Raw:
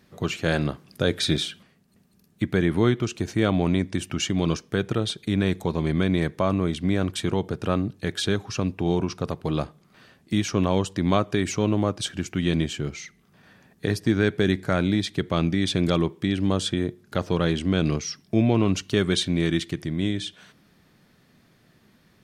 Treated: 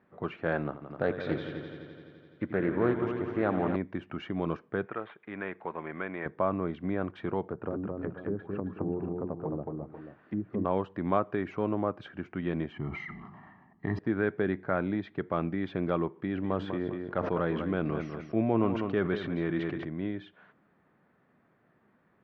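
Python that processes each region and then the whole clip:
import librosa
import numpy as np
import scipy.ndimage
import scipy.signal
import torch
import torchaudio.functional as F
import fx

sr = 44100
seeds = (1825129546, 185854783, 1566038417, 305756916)

y = fx.chain(x, sr, fx.highpass(hz=46.0, slope=12),
    fx.echo_heads(ms=85, heads='all three', feedback_pct=61, wet_db=-12),
    fx.doppler_dist(depth_ms=0.25), at=(0.64, 3.76))
y = fx.chain(y, sr, fx.dead_time(dead_ms=0.058),
    fx.lowpass(hz=2500.0, slope=24),
    fx.tilt_eq(slope=4.5), at=(4.86, 6.26))
y = fx.chain(y, sr, fx.env_lowpass_down(base_hz=390.0, full_db=-22.0),
    fx.hum_notches(base_hz=60, count=3),
    fx.echo_multitap(ms=(218, 374, 487, 523), db=(-3.0, -17.0, -11.5, -19.5)), at=(7.47, 10.65))
y = fx.chain(y, sr, fx.high_shelf(hz=2400.0, db=-8.0),
    fx.comb(ms=1.0, depth=0.98),
    fx.sustainer(db_per_s=36.0), at=(12.72, 13.99))
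y = fx.chain(y, sr, fx.echo_feedback(ms=198, feedback_pct=20, wet_db=-11.0),
    fx.sustainer(db_per_s=30.0), at=(16.13, 19.85))
y = scipy.signal.sosfilt(scipy.signal.bessel(4, 1000.0, 'lowpass', norm='mag', fs=sr, output='sos'), y)
y = fx.tilt_eq(y, sr, slope=4.0)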